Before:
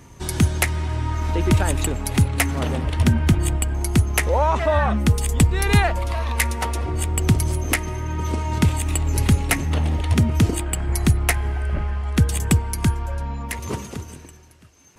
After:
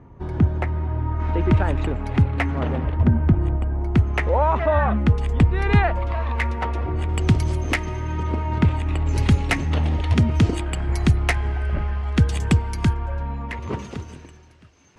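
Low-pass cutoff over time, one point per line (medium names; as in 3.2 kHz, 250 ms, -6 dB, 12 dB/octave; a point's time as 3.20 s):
1.1 kHz
from 1.20 s 2 kHz
from 2.92 s 1.1 kHz
from 3.95 s 2.2 kHz
from 7.09 s 4.5 kHz
from 8.23 s 2.3 kHz
from 9.06 s 4.8 kHz
from 12.93 s 2.6 kHz
from 13.79 s 4.4 kHz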